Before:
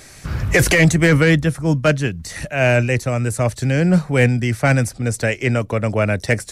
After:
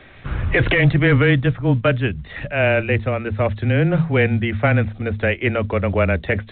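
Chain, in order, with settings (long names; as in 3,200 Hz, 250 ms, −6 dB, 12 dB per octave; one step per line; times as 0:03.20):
mains-hum notches 60/120/180/240 Hz
frequency shifter −16 Hz
boost into a limiter +6 dB
level −5.5 dB
mu-law 64 kbit/s 8,000 Hz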